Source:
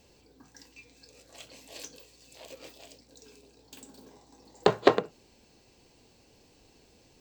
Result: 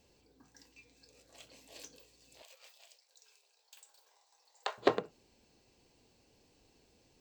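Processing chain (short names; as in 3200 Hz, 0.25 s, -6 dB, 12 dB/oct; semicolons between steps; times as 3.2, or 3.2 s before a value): 2.42–4.78 Bessel high-pass 950 Hz, order 6; gain -7.5 dB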